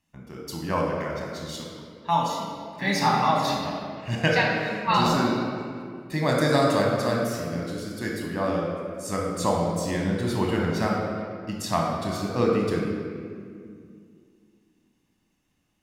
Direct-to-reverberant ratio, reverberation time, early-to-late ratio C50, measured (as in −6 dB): −1.0 dB, 2.2 s, 0.5 dB